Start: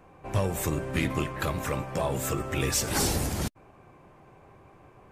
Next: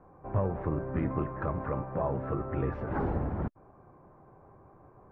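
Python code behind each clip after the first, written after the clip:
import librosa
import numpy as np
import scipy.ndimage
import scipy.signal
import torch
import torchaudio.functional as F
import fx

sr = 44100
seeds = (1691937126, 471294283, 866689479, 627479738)

y = scipy.signal.sosfilt(scipy.signal.butter(4, 1400.0, 'lowpass', fs=sr, output='sos'), x)
y = y * librosa.db_to_amplitude(-2.0)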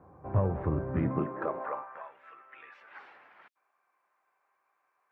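y = fx.filter_sweep_highpass(x, sr, from_hz=71.0, to_hz=2500.0, start_s=0.87, end_s=2.15, q=1.4)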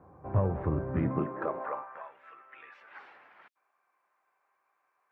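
y = x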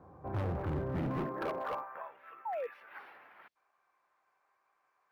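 y = fx.spec_paint(x, sr, seeds[0], shape='fall', start_s=2.45, length_s=0.22, low_hz=450.0, high_hz=950.0, level_db=-36.0)
y = np.clip(y, -10.0 ** (-31.5 / 20.0), 10.0 ** (-31.5 / 20.0))
y = np.interp(np.arange(len(y)), np.arange(len(y))[::3], y[::3])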